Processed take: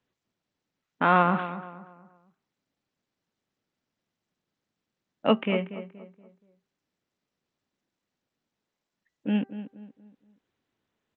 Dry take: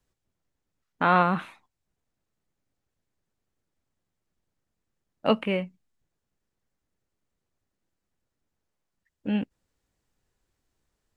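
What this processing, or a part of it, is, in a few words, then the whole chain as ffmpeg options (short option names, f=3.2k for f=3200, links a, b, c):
Bluetooth headset: -filter_complex "[0:a]highpass=140,equalizer=f=240:t=o:w=0.73:g=2.5,asplit=2[a][b];[b]adelay=237,lowpass=f=1.8k:p=1,volume=-12dB,asplit=2[c][d];[d]adelay=237,lowpass=f=1.8k:p=1,volume=0.38,asplit=2[e][f];[f]adelay=237,lowpass=f=1.8k:p=1,volume=0.38,asplit=2[g][h];[h]adelay=237,lowpass=f=1.8k:p=1,volume=0.38[i];[a][c][e][g][i]amix=inputs=5:normalize=0,bandreject=f=392.5:t=h:w=4,bandreject=f=785:t=h:w=4,bandreject=f=1.1775k:t=h:w=4,bandreject=f=1.57k:t=h:w=4,bandreject=f=1.9625k:t=h:w=4,aresample=8000,aresample=44100" -ar 16000 -c:a sbc -b:a 64k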